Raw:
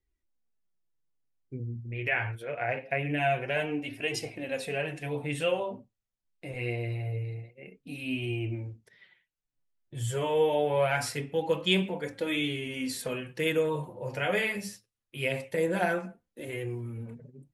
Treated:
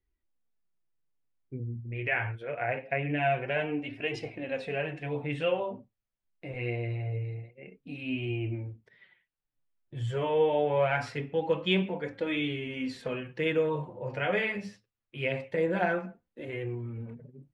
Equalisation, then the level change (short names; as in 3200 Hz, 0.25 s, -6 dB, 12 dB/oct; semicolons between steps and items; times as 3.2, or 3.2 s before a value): LPF 3000 Hz 12 dB/oct; 0.0 dB